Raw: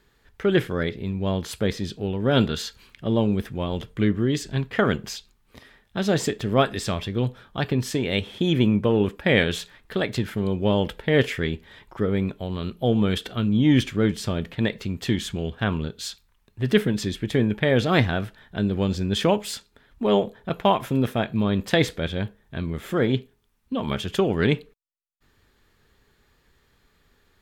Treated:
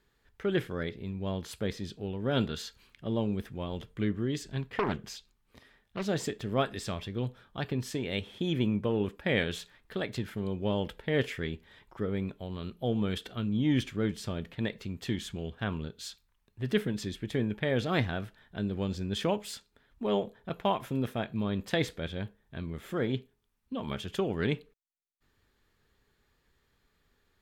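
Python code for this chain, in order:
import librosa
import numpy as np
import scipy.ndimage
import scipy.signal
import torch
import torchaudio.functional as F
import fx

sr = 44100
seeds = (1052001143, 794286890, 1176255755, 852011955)

y = fx.doppler_dist(x, sr, depth_ms=0.68, at=(4.76, 6.06))
y = F.gain(torch.from_numpy(y), -9.0).numpy()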